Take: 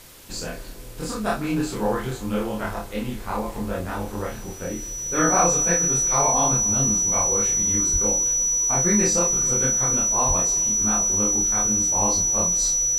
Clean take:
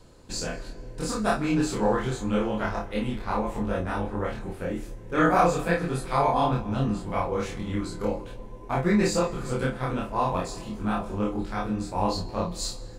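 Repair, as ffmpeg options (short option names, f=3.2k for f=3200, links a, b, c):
-filter_complex "[0:a]bandreject=f=5.9k:w=30,asplit=3[a][b][c];[a]afade=t=out:st=7.92:d=0.02[d];[b]highpass=f=140:w=0.5412,highpass=f=140:w=1.3066,afade=t=in:st=7.92:d=0.02,afade=t=out:st=8.04:d=0.02[e];[c]afade=t=in:st=8.04:d=0.02[f];[d][e][f]amix=inputs=3:normalize=0,asplit=3[g][h][i];[g]afade=t=out:st=10.27:d=0.02[j];[h]highpass=f=140:w=0.5412,highpass=f=140:w=1.3066,afade=t=in:st=10.27:d=0.02,afade=t=out:st=10.39:d=0.02[k];[i]afade=t=in:st=10.39:d=0.02[l];[j][k][l]amix=inputs=3:normalize=0,afwtdn=0.005"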